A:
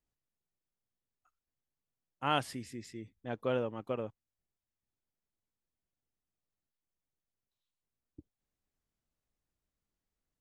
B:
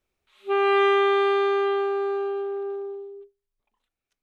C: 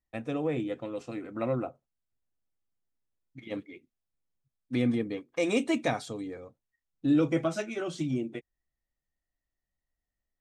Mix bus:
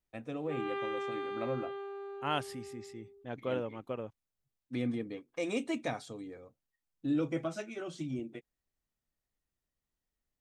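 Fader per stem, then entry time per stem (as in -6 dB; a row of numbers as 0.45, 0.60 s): -2.5, -17.5, -7.0 dB; 0.00, 0.00, 0.00 s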